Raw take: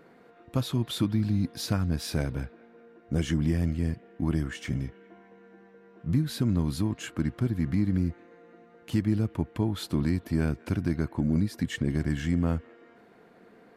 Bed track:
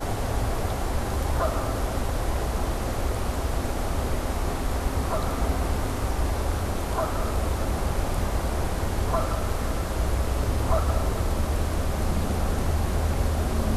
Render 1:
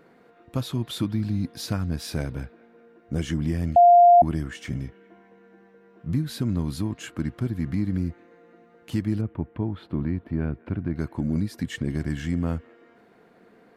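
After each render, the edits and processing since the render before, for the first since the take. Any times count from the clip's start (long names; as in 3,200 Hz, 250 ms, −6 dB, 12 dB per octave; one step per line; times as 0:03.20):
0:03.76–0:04.22: beep over 700 Hz −9.5 dBFS
0:09.21–0:10.96: high-frequency loss of the air 500 metres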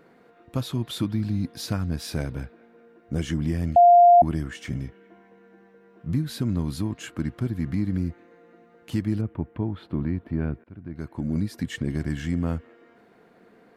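0:10.64–0:11.43: fade in, from −23.5 dB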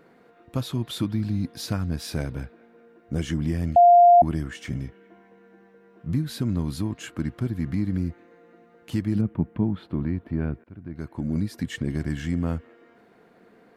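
0:09.15–0:09.81: parametric band 190 Hz +9.5 dB 0.69 octaves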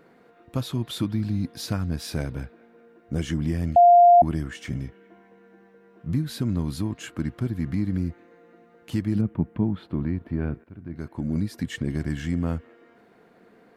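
0:10.17–0:11.08: double-tracking delay 35 ms −14 dB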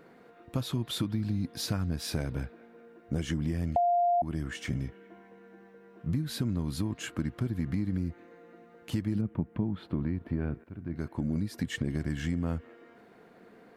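downward compressor 4 to 1, threshold −27 dBFS, peak gain reduction 12.5 dB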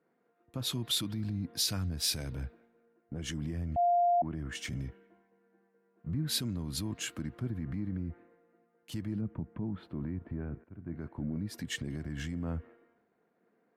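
brickwall limiter −27.5 dBFS, peak gain reduction 11 dB
multiband upward and downward expander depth 100%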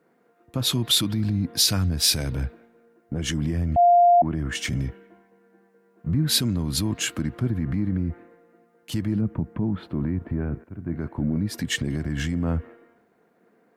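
level +11 dB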